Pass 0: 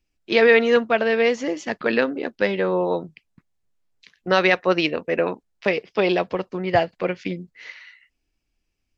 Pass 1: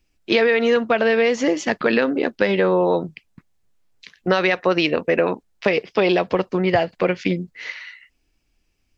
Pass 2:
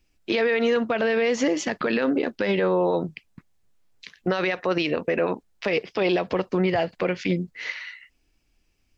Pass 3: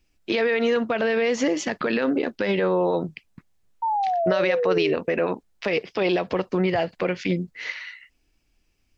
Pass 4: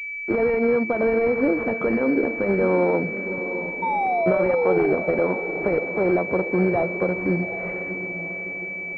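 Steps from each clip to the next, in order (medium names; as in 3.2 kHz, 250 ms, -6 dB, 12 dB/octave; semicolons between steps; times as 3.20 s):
in parallel at +1 dB: peak limiter -14 dBFS, peak gain reduction 11.5 dB; on the sum: compression 10:1, threshold -14 dBFS, peak gain reduction 8 dB; trim +1 dB
peak limiter -13.5 dBFS, peak gain reduction 9.5 dB
painted sound fall, 3.82–4.93 s, 380–930 Hz -23 dBFS
echo that smears into a reverb 739 ms, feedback 49%, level -10 dB; class-D stage that switches slowly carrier 2.3 kHz; trim +2 dB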